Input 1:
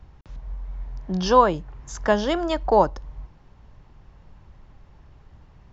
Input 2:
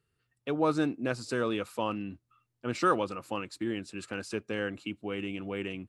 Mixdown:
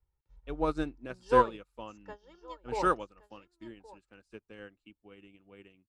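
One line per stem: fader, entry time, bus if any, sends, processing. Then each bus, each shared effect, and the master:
−0.5 dB, 0.00 s, no send, echo send −19.5 dB, comb filter 2.2 ms, depth 86%; automatic ducking −12 dB, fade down 1.65 s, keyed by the second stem
+2.5 dB, 0.00 s, no send, no echo send, no processing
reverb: not used
echo: single-tap delay 1,120 ms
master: expander for the loud parts 2.5 to 1, over −41 dBFS

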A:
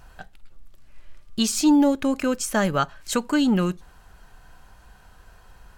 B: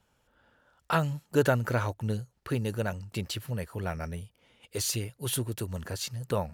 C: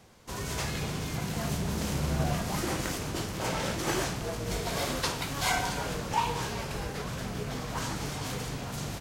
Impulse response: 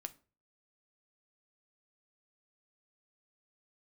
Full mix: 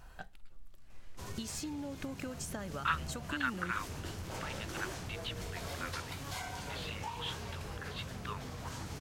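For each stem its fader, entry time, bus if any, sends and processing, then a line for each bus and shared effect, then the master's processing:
−5.5 dB, 0.00 s, bus A, no send, downward compressor, threshold −23 dBFS, peak gain reduction 9.5 dB
−1.0 dB, 1.95 s, no bus, no send, elliptic band-pass filter 1,100–3,600 Hz
−9.0 dB, 0.90 s, bus A, no send, parametric band 86 Hz +14.5 dB 0.28 octaves
bus A: 0.0 dB, downward compressor 12 to 1, threshold −37 dBFS, peak gain reduction 11.5 dB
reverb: not used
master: no processing

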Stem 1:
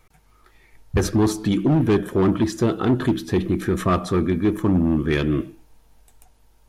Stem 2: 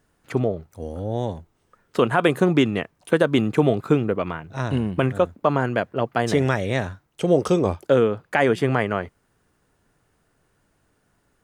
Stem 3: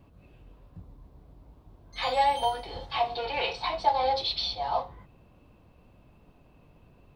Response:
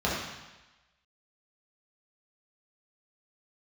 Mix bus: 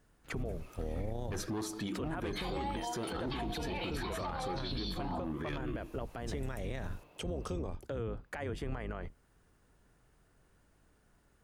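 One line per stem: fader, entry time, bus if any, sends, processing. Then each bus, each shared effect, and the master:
+1.0 dB, 0.35 s, no send, low-shelf EQ 370 Hz −9 dB; downward compressor, threshold −33 dBFS, peak gain reduction 14 dB
−4.0 dB, 0.00 s, no send, sub-octave generator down 2 octaves, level +3 dB; downward compressor 10 to 1, threshold −25 dBFS, peak gain reduction 15.5 dB
+3.0 dB, 0.40 s, no send, downward compressor 2.5 to 1, threshold −39 dBFS, peak gain reduction 14 dB; high-pass filter 350 Hz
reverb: not used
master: brickwall limiter −29 dBFS, peak gain reduction 14.5 dB

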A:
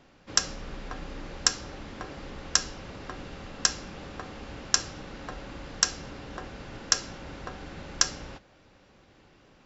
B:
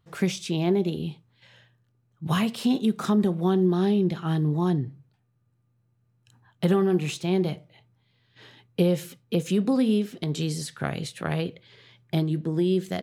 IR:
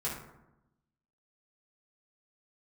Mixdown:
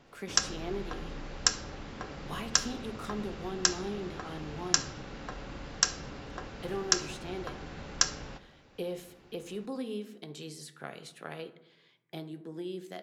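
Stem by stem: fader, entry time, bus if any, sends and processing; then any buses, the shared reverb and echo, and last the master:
−3.0 dB, 0.00 s, send −14.5 dB, no processing
−12.5 dB, 0.00 s, send −12 dB, high-pass filter 310 Hz 12 dB per octave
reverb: on, RT60 0.90 s, pre-delay 3 ms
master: no processing

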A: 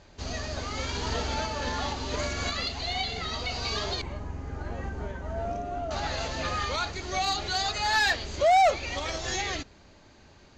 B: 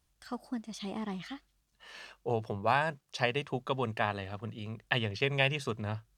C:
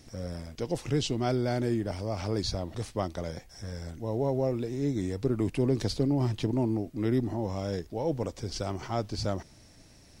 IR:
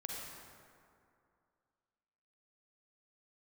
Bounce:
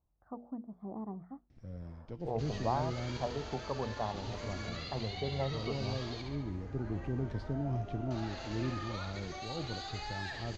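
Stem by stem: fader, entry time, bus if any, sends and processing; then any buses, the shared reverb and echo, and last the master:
−9.5 dB, 2.20 s, no send, echo send −5 dB, brickwall limiter −24 dBFS, peak gain reduction 7 dB; downward compressor, threshold −31 dBFS, peak gain reduction 5.5 dB
−3.5 dB, 0.00 s, no send, no echo send, inverse Chebyshev low-pass filter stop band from 2,600 Hz, stop band 50 dB; mains-hum notches 60/120/180/240/300/360/420/480 Hz
−4.5 dB, 1.50 s, muted 0:03.17–0:04.14, no send, no echo send, bass and treble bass +9 dB, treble −14 dB; tuned comb filter 340 Hz, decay 0.91 s, mix 70%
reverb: not used
echo: repeating echo 69 ms, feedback 58%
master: low-pass filter 6,300 Hz 12 dB per octave

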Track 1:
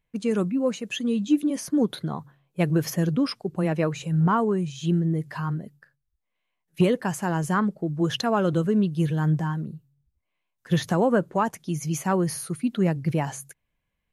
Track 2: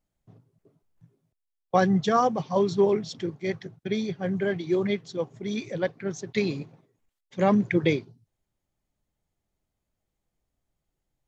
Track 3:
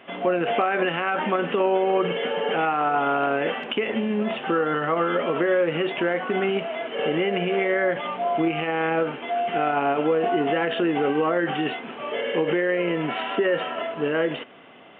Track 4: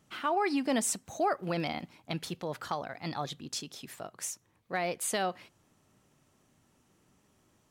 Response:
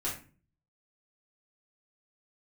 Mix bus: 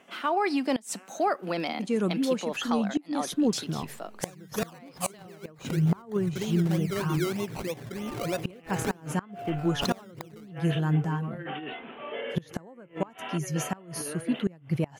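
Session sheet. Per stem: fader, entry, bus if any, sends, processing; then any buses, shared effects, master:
−2.5 dB, 1.65 s, no send, no processing
−5.5 dB, 2.50 s, no send, sample-and-hold swept by an LFO 20×, swing 60% 3.2 Hz; background raised ahead of every attack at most 46 dB per second
−11.0 dB, 0.00 s, no send, compressor whose output falls as the input rises −26 dBFS, ratio −0.5; automatic ducking −19 dB, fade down 0.20 s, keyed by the fourth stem
+3.0 dB, 0.00 s, no send, Butterworth high-pass 180 Hz 48 dB per octave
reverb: not used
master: gate with flip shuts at −15 dBFS, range −25 dB

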